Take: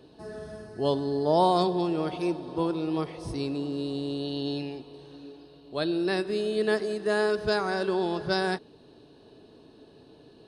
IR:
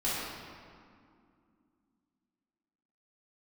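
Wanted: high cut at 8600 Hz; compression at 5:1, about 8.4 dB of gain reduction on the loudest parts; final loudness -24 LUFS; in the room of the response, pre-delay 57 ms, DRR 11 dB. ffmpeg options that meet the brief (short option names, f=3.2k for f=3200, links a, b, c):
-filter_complex "[0:a]lowpass=8.6k,acompressor=threshold=-27dB:ratio=5,asplit=2[a][b];[1:a]atrim=start_sample=2205,adelay=57[c];[b][c]afir=irnorm=-1:irlink=0,volume=-19.5dB[d];[a][d]amix=inputs=2:normalize=0,volume=8dB"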